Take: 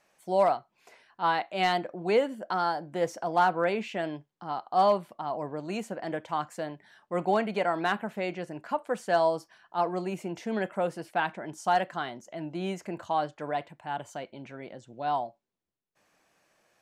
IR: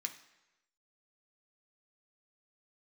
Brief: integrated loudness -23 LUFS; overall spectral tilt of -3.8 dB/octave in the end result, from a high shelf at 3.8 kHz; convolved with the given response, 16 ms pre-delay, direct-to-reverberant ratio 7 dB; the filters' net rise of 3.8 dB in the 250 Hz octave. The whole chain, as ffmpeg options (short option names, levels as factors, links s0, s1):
-filter_complex "[0:a]equalizer=f=250:t=o:g=5.5,highshelf=f=3800:g=3,asplit=2[s0][s1];[1:a]atrim=start_sample=2205,adelay=16[s2];[s1][s2]afir=irnorm=-1:irlink=0,volume=0.531[s3];[s0][s3]amix=inputs=2:normalize=0,volume=1.88"